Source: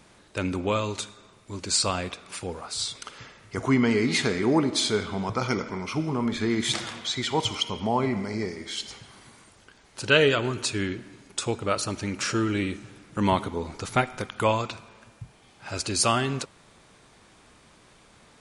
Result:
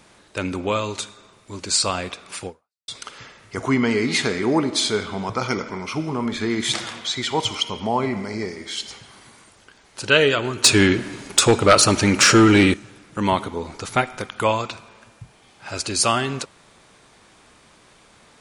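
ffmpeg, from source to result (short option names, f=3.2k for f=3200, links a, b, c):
-filter_complex "[0:a]asettb=1/sr,asplit=3[a][b][c];[a]atrim=end=10.644[d];[b]atrim=start=10.64:end=12.74,asetpts=PTS-STARTPTS,afade=t=in:d=0.004:c=qsin,afade=t=out:st=2.096:d=0.004:c=qsin,aeval=exprs='0.398*sin(PI/2*2.51*val(0)/0.398)':c=same[e];[c]atrim=start=12.736[f];[d][e]acrossfade=d=0.004:c1=hsin:c2=qsin[g];[g][f]acrossfade=d=0.004:c1=qsin:c2=hsin,asplit=2[h][i];[h]atrim=end=2.88,asetpts=PTS-STARTPTS,afade=t=out:st=2.47:d=0.41:c=exp[j];[i]atrim=start=2.88,asetpts=PTS-STARTPTS,afade=t=in:d=0.004:c=hsin[k];[j][k]concat=n=2:v=0:a=1,lowshelf=f=260:g=-4.5,volume=4dB"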